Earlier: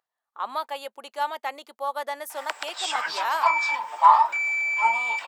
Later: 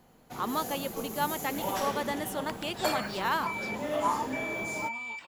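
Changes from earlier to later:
first sound: unmuted; second sound -11.0 dB; master: remove resonant high-pass 690 Hz, resonance Q 1.6

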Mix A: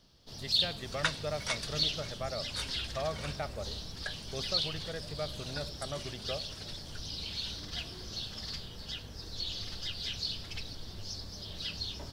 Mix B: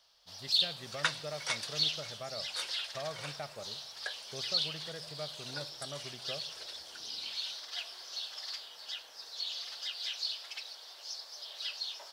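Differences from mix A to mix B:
speech -5.0 dB; first sound: add high-pass 630 Hz 24 dB/octave

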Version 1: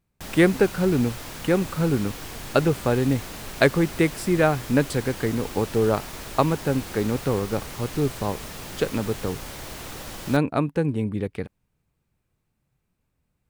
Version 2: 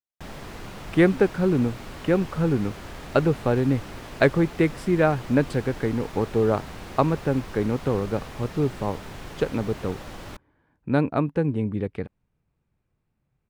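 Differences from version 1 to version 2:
speech: entry +0.60 s; master: add low-pass 2.2 kHz 6 dB/octave

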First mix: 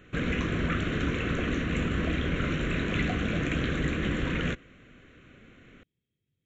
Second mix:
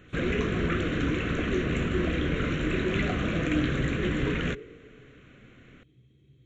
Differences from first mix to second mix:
speech +11.5 dB; reverb: on, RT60 2.1 s

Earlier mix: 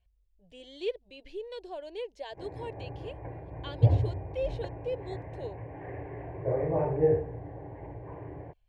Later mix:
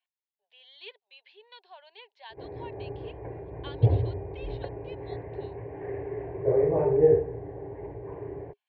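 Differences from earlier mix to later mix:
speech: add Chebyshev band-pass 860–4100 Hz, order 3; master: add peaking EQ 410 Hz +13.5 dB 0.27 oct

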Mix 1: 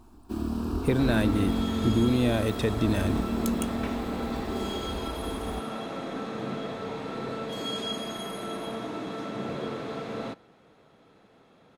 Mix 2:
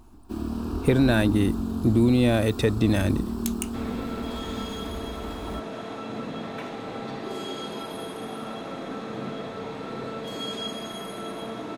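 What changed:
speech +4.5 dB; second sound: entry +2.75 s

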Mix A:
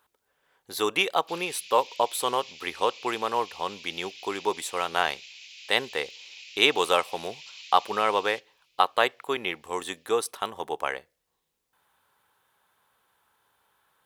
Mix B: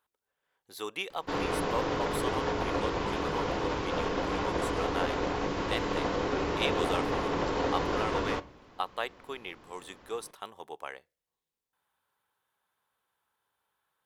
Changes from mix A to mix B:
speech -11.5 dB; background: remove Chebyshev high-pass 2.4 kHz, order 5

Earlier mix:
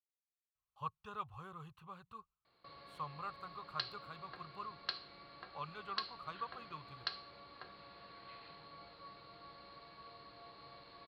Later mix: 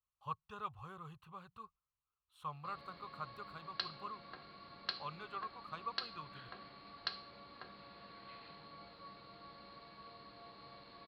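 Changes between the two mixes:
speech: entry -0.55 s; background: add peaking EQ 220 Hz +8 dB 0.45 oct

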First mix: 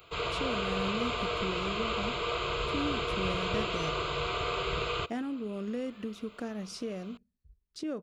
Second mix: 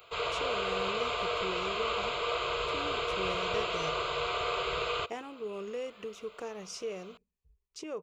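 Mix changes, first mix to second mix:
speech: add rippled EQ curve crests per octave 0.74, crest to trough 9 dB; master: add resonant low shelf 380 Hz -8 dB, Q 1.5

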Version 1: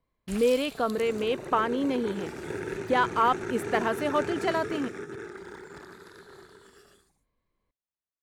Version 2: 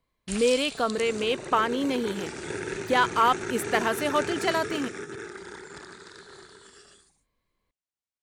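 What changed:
background: add brick-wall FIR low-pass 10 kHz; master: add treble shelf 2.3 kHz +10 dB

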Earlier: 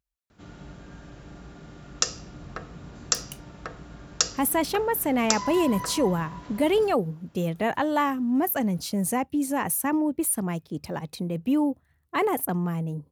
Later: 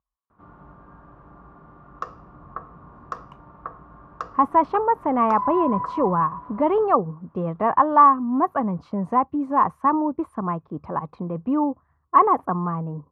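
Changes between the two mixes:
background -5.5 dB; master: add resonant low-pass 1.1 kHz, resonance Q 7.5

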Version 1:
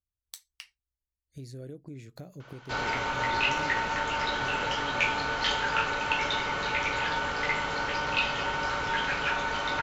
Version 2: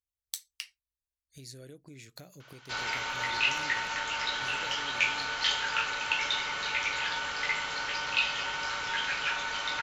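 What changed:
background -4.5 dB; master: add tilt shelf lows -8 dB, about 1.2 kHz

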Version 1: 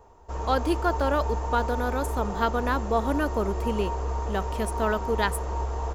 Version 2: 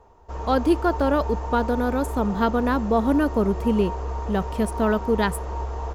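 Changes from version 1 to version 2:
speech: add peaking EQ 150 Hz +11 dB 2.9 oct; background: add low-pass 5.7 kHz 12 dB/octave

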